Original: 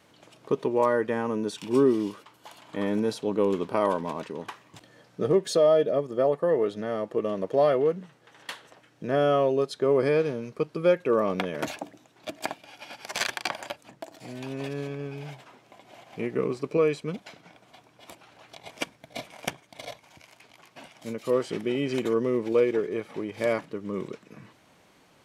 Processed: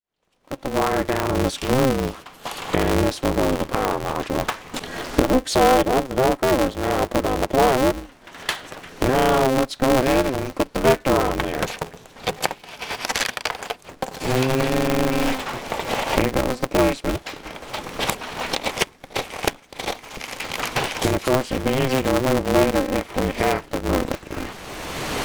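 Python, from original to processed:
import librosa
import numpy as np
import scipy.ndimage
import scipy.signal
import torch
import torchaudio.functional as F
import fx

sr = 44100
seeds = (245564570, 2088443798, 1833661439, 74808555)

y = fx.fade_in_head(x, sr, length_s=5.97)
y = fx.recorder_agc(y, sr, target_db=-15.5, rise_db_per_s=21.0, max_gain_db=30)
y = y * np.sign(np.sin(2.0 * np.pi * 130.0 * np.arange(len(y)) / sr))
y = y * librosa.db_to_amplitude(4.5)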